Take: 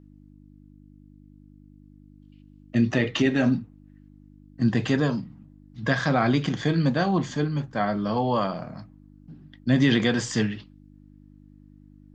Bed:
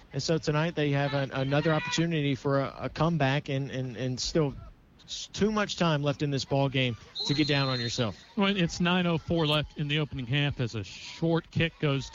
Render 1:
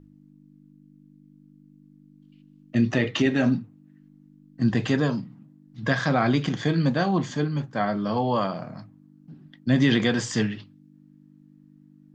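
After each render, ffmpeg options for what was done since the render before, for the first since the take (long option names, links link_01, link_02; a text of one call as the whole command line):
ffmpeg -i in.wav -af "bandreject=frequency=50:width_type=h:width=4,bandreject=frequency=100:width_type=h:width=4" out.wav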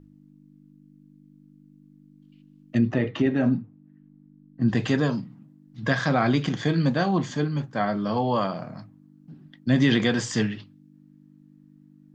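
ffmpeg -i in.wav -filter_complex "[0:a]asplit=3[link_01][link_02][link_03];[link_01]afade=type=out:start_time=2.77:duration=0.02[link_04];[link_02]lowpass=frequency=1100:poles=1,afade=type=in:start_time=2.77:duration=0.02,afade=type=out:start_time=4.68:duration=0.02[link_05];[link_03]afade=type=in:start_time=4.68:duration=0.02[link_06];[link_04][link_05][link_06]amix=inputs=3:normalize=0" out.wav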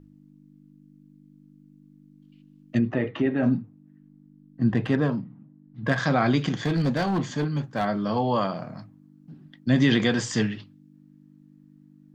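ffmpeg -i in.wav -filter_complex "[0:a]asettb=1/sr,asplit=3[link_01][link_02][link_03];[link_01]atrim=end=2.794[link_04];[link_02]atrim=start=2.79:end=3.43,asetpts=PTS-STARTPTS,afade=type=in:duration=0.004:curve=qsin,afade=type=out:start_time=0.636:duration=0.004:curve=qsin,bass=frequency=250:gain=-4,treble=frequency=4000:gain=-13[link_05];[link_03]atrim=start=3.426[link_06];[link_04][link_05]acrossfade=duration=0.004:curve1=hsin:curve2=qsin[link_07];[link_07][link_06]acrossfade=duration=0.004:curve1=qsin:curve2=hsin,asettb=1/sr,asplit=3[link_08][link_09][link_10];[link_08]atrim=end=4.684[link_11];[link_09]atrim=start=4.68:end=5.98,asetpts=PTS-STARTPTS,afade=type=in:duration=0.004:curve=qsin,afade=type=out:start_time=1.296:duration=0.004:curve=qsin,adynamicsmooth=sensitivity=1:basefreq=2000[link_12];[link_10]atrim=start=5.976[link_13];[link_11][link_12]acrossfade=duration=0.004:curve1=hsin:curve2=qsin[link_14];[link_14][link_13]acrossfade=duration=0.004:curve1=qsin:curve2=hsin,asettb=1/sr,asplit=3[link_15][link_16][link_17];[link_15]atrim=end=6.534[link_18];[link_16]atrim=start=6.53:end=7.87,asetpts=PTS-STARTPTS,afade=type=in:duration=0.004:curve=qsin,afade=type=out:start_time=1.336:duration=0.004:curve=qsin,asoftclip=type=hard:threshold=-19.5dB[link_19];[link_17]atrim=start=7.866[link_20];[link_18][link_19]acrossfade=duration=0.004:curve1=hsin:curve2=qsin[link_21];[link_21][link_20]acrossfade=duration=0.004:curve1=qsin:curve2=hsin" out.wav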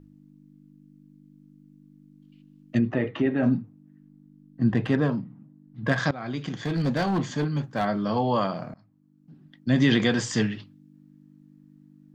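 ffmpeg -i in.wav -filter_complex "[0:a]asplit=3[link_01][link_02][link_03];[link_01]atrim=end=6.11,asetpts=PTS-STARTPTS,afade=type=out:start_time=6.106:duration=0.004:curve=hsin:silence=0.105925[link_04];[link_02]atrim=start=6.11:end=8.74,asetpts=PTS-STARTPTS,afade=type=in:duration=0.88:silence=0.105925,afade=type=out:start_time=2.626:duration=0.004:curve=hsin:silence=0.1[link_05];[link_03]atrim=start=8.74,asetpts=PTS-STARTPTS,afade=type=in:duration=1.15:silence=0.1[link_06];[link_04][link_05][link_06]concat=n=3:v=0:a=1" out.wav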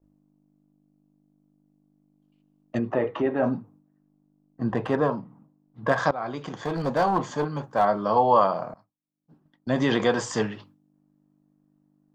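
ffmpeg -i in.wav -af "agate=range=-33dB:threshold=-45dB:ratio=3:detection=peak,equalizer=frequency=125:width_type=o:width=1:gain=-6,equalizer=frequency=250:width_type=o:width=1:gain=-5,equalizer=frequency=500:width_type=o:width=1:gain=5,equalizer=frequency=1000:width_type=o:width=1:gain=10,equalizer=frequency=2000:width_type=o:width=1:gain=-5,equalizer=frequency=4000:width_type=o:width=1:gain=-4" out.wav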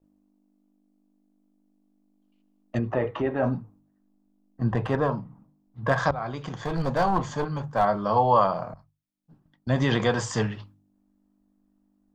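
ffmpeg -i in.wav -af "bandreject=frequency=50:width_type=h:width=6,bandreject=frequency=100:width_type=h:width=6,bandreject=frequency=150:width_type=h:width=6,asubboost=boost=5:cutoff=120" out.wav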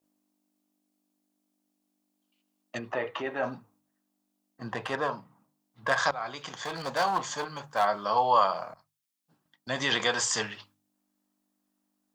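ffmpeg -i in.wav -af "highpass=frequency=940:poles=1,highshelf=frequency=2500:gain=8.5" out.wav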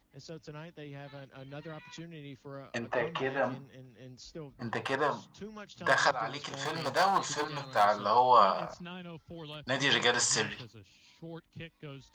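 ffmpeg -i in.wav -i bed.wav -filter_complex "[1:a]volume=-18.5dB[link_01];[0:a][link_01]amix=inputs=2:normalize=0" out.wav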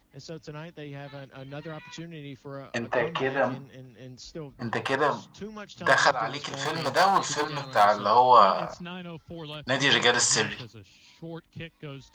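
ffmpeg -i in.wav -af "volume=5.5dB" out.wav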